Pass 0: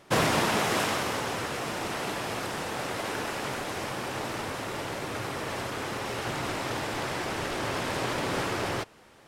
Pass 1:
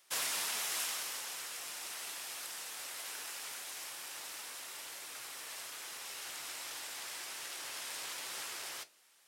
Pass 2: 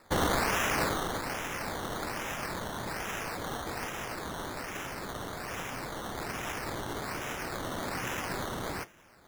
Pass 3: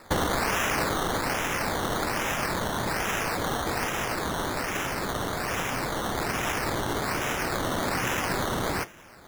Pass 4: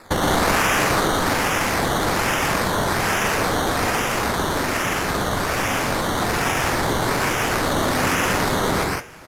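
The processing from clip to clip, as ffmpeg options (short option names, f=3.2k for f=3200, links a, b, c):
-af "aderivative,bandreject=f=49.64:t=h:w=4,bandreject=f=99.28:t=h:w=4,bandreject=f=148.92:t=h:w=4,bandreject=f=198.56:t=h:w=4,bandreject=f=248.2:t=h:w=4,bandreject=f=297.84:t=h:w=4,bandreject=f=347.48:t=h:w=4,bandreject=f=397.12:t=h:w=4,bandreject=f=446.76:t=h:w=4,bandreject=f=496.4:t=h:w=4,bandreject=f=546.04:t=h:w=4,bandreject=f=595.68:t=h:w=4,bandreject=f=645.32:t=h:w=4,flanger=delay=5.7:depth=6.2:regen=-71:speed=1.2:shape=sinusoidal,volume=3.5dB"
-af "asubboost=boost=10.5:cutoff=210,acrusher=samples=14:mix=1:aa=0.000001:lfo=1:lforange=8.4:lforate=1.2,volume=8dB"
-af "acompressor=threshold=-32dB:ratio=6,volume=9dB"
-filter_complex "[0:a]flanger=delay=9.6:depth=2:regen=-80:speed=0.96:shape=sinusoidal,asplit=2[a][b];[b]aecho=0:1:119.5|163.3:0.794|0.794[c];[a][c]amix=inputs=2:normalize=0,aresample=32000,aresample=44100,volume=8.5dB"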